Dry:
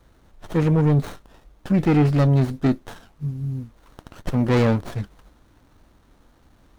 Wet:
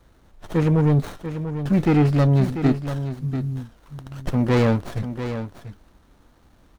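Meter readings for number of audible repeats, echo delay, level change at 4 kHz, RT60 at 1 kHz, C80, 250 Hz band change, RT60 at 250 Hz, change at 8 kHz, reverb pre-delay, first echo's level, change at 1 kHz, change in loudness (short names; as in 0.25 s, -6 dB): 1, 0.691 s, +0.5 dB, none, none, +0.5 dB, none, n/a, none, -10.0 dB, +0.5 dB, -0.5 dB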